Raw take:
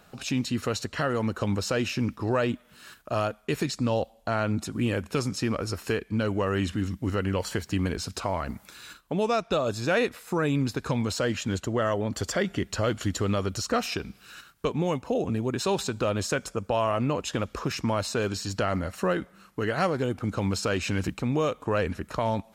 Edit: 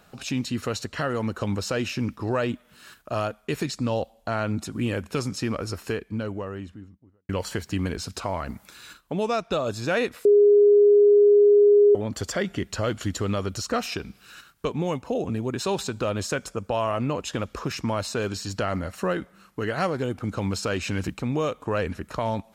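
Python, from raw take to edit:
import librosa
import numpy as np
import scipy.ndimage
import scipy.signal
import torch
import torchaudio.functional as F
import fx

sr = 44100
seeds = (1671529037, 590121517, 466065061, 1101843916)

y = fx.studio_fade_out(x, sr, start_s=5.6, length_s=1.69)
y = fx.edit(y, sr, fx.bleep(start_s=10.25, length_s=1.7, hz=411.0, db=-12.0), tone=tone)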